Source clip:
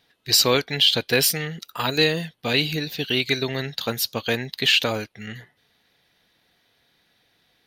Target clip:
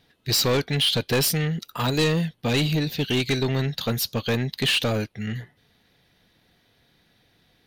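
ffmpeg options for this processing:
-af "lowshelf=f=330:g=10.5,asoftclip=type=tanh:threshold=0.141"

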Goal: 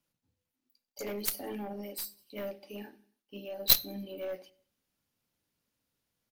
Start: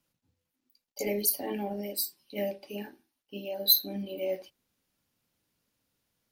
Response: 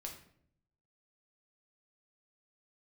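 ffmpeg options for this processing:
-filter_complex "[0:a]aecho=1:1:94|188|282:0.0631|0.0265|0.0111,aeval=exprs='0.447*(cos(1*acos(clip(val(0)/0.447,-1,1)))-cos(1*PI/2))+0.178*(cos(2*acos(clip(val(0)/0.447,-1,1)))-cos(2*PI/2))+0.0224*(cos(3*acos(clip(val(0)/0.447,-1,1)))-cos(3*PI/2))+0.0251*(cos(4*acos(clip(val(0)/0.447,-1,1)))-cos(4*PI/2))+0.0891*(cos(7*acos(clip(val(0)/0.447,-1,1)))-cos(7*PI/2))':c=same,asplit=2[s0][s1];[1:a]atrim=start_sample=2205,afade=t=out:st=0.43:d=0.01,atrim=end_sample=19404,asetrate=57330,aresample=44100[s2];[s1][s2]afir=irnorm=-1:irlink=0,volume=0.335[s3];[s0][s3]amix=inputs=2:normalize=0"

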